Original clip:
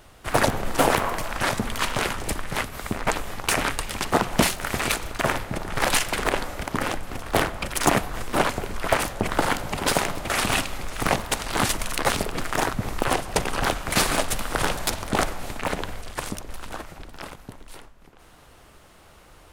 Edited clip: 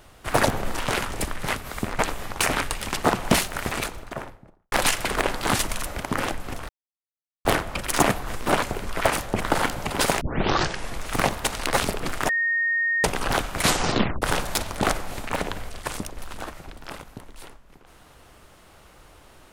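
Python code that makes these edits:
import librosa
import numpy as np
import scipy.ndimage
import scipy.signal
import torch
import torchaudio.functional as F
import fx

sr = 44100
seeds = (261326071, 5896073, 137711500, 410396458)

y = fx.studio_fade_out(x, sr, start_s=4.48, length_s=1.32)
y = fx.edit(y, sr, fx.cut(start_s=0.79, length_s=1.08),
    fx.insert_silence(at_s=7.32, length_s=0.76),
    fx.tape_start(start_s=10.08, length_s=0.8),
    fx.move(start_s=11.51, length_s=0.45, to_s=6.49),
    fx.bleep(start_s=12.61, length_s=0.75, hz=1850.0, db=-20.0),
    fx.tape_stop(start_s=13.93, length_s=0.61), tone=tone)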